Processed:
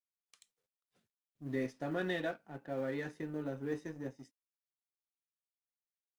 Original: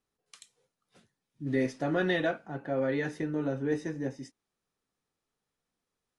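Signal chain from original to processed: G.711 law mismatch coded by A; gain -7 dB

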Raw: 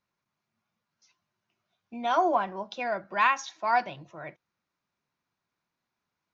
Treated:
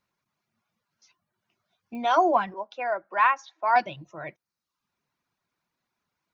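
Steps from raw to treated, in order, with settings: reverb removal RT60 0.65 s; 2.54–3.76 three-band isolator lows -20 dB, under 380 Hz, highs -14 dB, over 2200 Hz; pops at 1.95, -34 dBFS; gain +4 dB

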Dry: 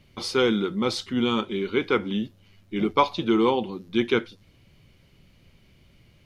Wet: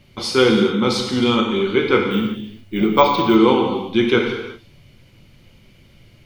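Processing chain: non-linear reverb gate 0.41 s falling, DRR 1 dB; 2.11–3.36 careless resampling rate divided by 2×, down none, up hold; gain +5 dB

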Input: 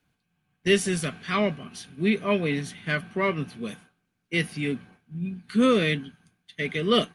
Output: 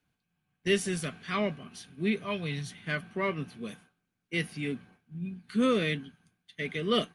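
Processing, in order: 2.23–2.7 graphic EQ 125/250/500/2000/4000 Hz +7/-9/-5/-4/+5 dB; gain -5.5 dB

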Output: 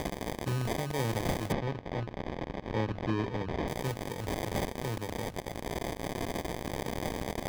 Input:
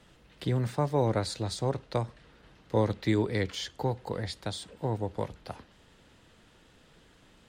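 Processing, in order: switching spikes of -21 dBFS; bell 1300 Hz -12.5 dB 1.5 oct; notches 50/100/150/200/250/300/350 Hz; sample-and-hold 32×; 1.52–3.68 air absorption 220 m; gain -3 dB

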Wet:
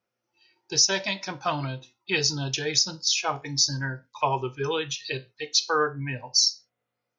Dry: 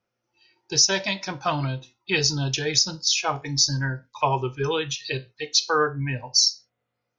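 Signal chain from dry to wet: low shelf 92 Hz -10 dB; gain -2 dB

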